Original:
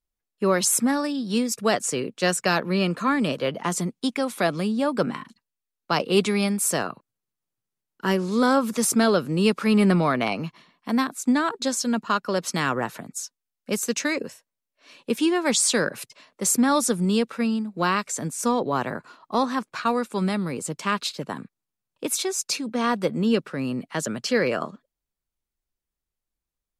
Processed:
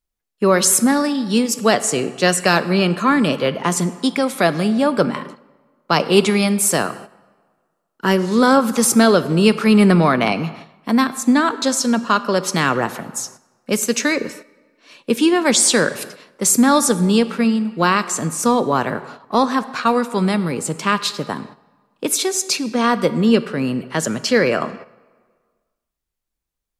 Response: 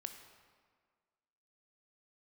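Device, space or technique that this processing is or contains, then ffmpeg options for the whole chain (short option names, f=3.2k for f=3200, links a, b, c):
keyed gated reverb: -filter_complex "[0:a]asplit=3[a][b][c];[1:a]atrim=start_sample=2205[d];[b][d]afir=irnorm=-1:irlink=0[e];[c]apad=whole_len=1181718[f];[e][f]sidechaingate=range=-9dB:threshold=-48dB:ratio=16:detection=peak,volume=2.5dB[g];[a][g]amix=inputs=2:normalize=0,volume=1.5dB"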